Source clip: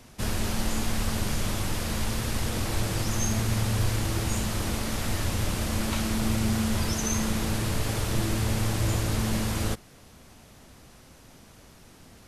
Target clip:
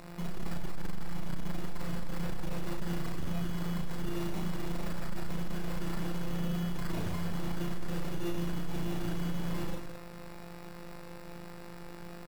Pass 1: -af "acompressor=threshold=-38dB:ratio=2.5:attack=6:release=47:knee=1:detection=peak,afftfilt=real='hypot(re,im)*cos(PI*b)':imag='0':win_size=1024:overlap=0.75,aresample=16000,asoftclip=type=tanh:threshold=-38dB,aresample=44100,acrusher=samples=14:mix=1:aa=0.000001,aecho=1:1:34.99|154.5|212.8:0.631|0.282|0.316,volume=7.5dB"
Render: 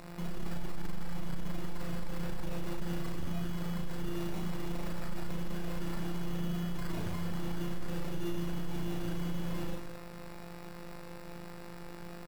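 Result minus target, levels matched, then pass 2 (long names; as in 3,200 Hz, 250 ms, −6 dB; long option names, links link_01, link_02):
downward compressor: peak gain reduction +3.5 dB
-af "acompressor=threshold=-32dB:ratio=2.5:attack=6:release=47:knee=1:detection=peak,afftfilt=real='hypot(re,im)*cos(PI*b)':imag='0':win_size=1024:overlap=0.75,aresample=16000,asoftclip=type=tanh:threshold=-38dB,aresample=44100,acrusher=samples=14:mix=1:aa=0.000001,aecho=1:1:34.99|154.5|212.8:0.631|0.282|0.316,volume=7.5dB"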